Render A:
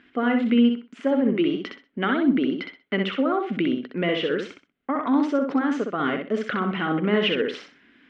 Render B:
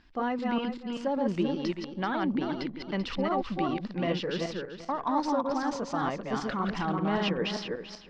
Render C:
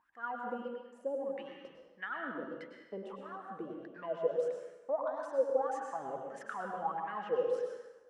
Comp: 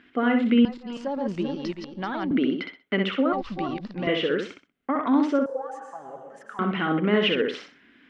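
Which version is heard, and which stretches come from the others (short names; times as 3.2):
A
0.65–2.31 from B
3.33–4.07 from B
5.46–6.59 from C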